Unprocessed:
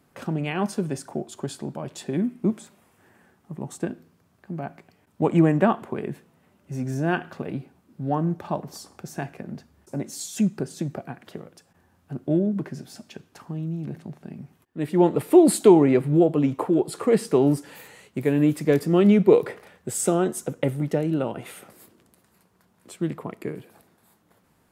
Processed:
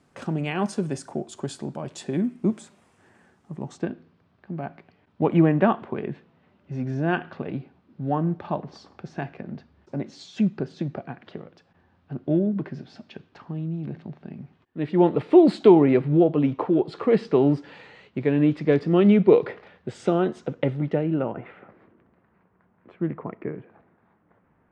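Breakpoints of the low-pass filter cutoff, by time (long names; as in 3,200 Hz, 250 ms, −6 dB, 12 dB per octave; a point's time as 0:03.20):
low-pass filter 24 dB per octave
0:03.52 8,900 Hz
0:03.92 4,200 Hz
0:20.76 4,200 Hz
0:21.36 2,100 Hz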